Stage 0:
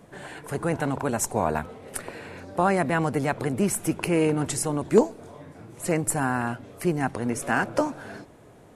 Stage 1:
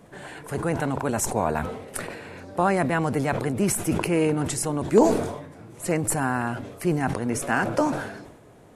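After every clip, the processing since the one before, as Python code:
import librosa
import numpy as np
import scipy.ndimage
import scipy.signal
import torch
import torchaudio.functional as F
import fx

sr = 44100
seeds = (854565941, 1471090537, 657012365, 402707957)

y = fx.sustainer(x, sr, db_per_s=60.0)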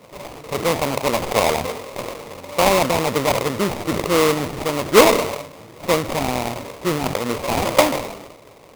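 y = fx.peak_eq(x, sr, hz=560.0, db=13.0, octaves=0.9)
y = fx.sample_hold(y, sr, seeds[0], rate_hz=1600.0, jitter_pct=20)
y = y * 10.0 ** (-1.5 / 20.0)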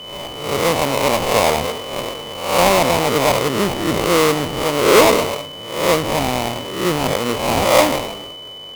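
y = fx.spec_swells(x, sr, rise_s=0.67)
y = y + 10.0 ** (-34.0 / 20.0) * np.sin(2.0 * np.pi * 3000.0 * np.arange(len(y)) / sr)
y = fx.cheby_harmonics(y, sr, harmonics=(5,), levels_db=(-17,), full_scale_db=2.0)
y = y * 10.0 ** (-3.0 / 20.0)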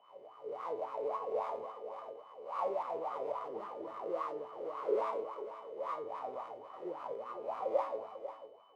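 y = fx.wah_lfo(x, sr, hz=3.6, low_hz=410.0, high_hz=1200.0, q=9.6)
y = fx.comb_fb(y, sr, f0_hz=110.0, decay_s=0.44, harmonics='all', damping=0.0, mix_pct=70)
y = y + 10.0 ** (-12.0 / 20.0) * np.pad(y, (int(495 * sr / 1000.0), 0))[:len(y)]
y = y * 10.0 ** (-3.5 / 20.0)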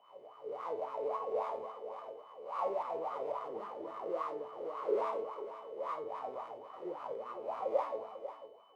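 y = fx.doubler(x, sr, ms=50.0, db=-13.5)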